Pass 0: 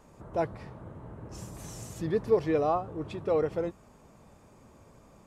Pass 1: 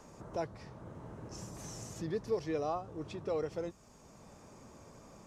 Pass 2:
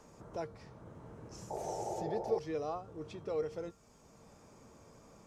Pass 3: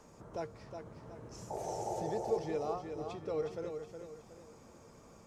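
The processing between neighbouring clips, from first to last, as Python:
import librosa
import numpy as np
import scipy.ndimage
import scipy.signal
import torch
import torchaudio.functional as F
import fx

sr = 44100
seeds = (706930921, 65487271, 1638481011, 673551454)

y1 = fx.peak_eq(x, sr, hz=5800.0, db=10.5, octaves=0.91)
y1 = fx.band_squash(y1, sr, depth_pct=40)
y1 = F.gain(torch.from_numpy(y1), -7.5).numpy()
y2 = fx.comb_fb(y1, sr, f0_hz=460.0, decay_s=0.33, harmonics='odd', damping=0.0, mix_pct=70)
y2 = fx.spec_paint(y2, sr, seeds[0], shape='noise', start_s=1.5, length_s=0.89, low_hz=330.0, high_hz=910.0, level_db=-46.0)
y2 = F.gain(torch.from_numpy(y2), 6.5).numpy()
y3 = fx.echo_feedback(y2, sr, ms=366, feedback_pct=38, wet_db=-7)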